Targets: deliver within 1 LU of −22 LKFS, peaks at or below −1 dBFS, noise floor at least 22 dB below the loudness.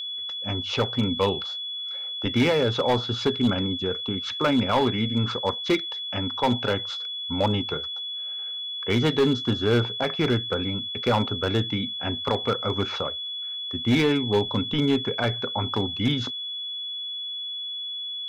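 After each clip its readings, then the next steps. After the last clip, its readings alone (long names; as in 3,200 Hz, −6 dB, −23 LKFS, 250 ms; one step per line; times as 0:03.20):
share of clipped samples 1.0%; peaks flattened at −15.0 dBFS; interfering tone 3,400 Hz; level of the tone −30 dBFS; integrated loudness −25.5 LKFS; sample peak −15.0 dBFS; target loudness −22.0 LKFS
→ clipped peaks rebuilt −15 dBFS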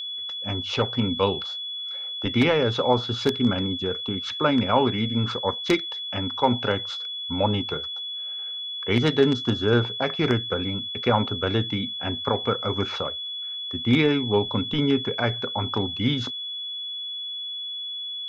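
share of clipped samples 0.0%; interfering tone 3,400 Hz; level of the tone −30 dBFS
→ notch filter 3,400 Hz, Q 30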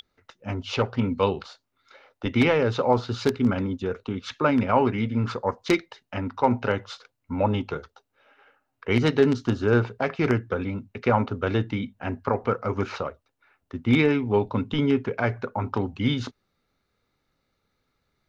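interfering tone none found; integrated loudness −25.0 LKFS; sample peak −5.5 dBFS; target loudness −22.0 LKFS
→ level +3 dB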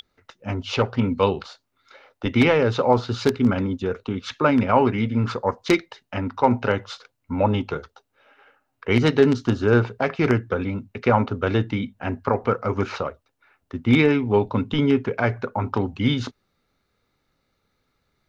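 integrated loudness −22.0 LKFS; sample peak −2.5 dBFS; background noise floor −74 dBFS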